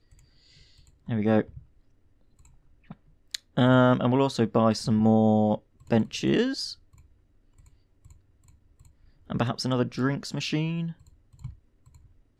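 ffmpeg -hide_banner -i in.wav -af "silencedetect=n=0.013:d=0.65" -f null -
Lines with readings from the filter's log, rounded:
silence_start: 0.00
silence_end: 1.08 | silence_duration: 1.08
silence_start: 1.58
silence_end: 2.91 | silence_duration: 1.33
silence_start: 6.73
silence_end: 9.30 | silence_duration: 2.57
silence_start: 11.50
silence_end: 12.39 | silence_duration: 0.89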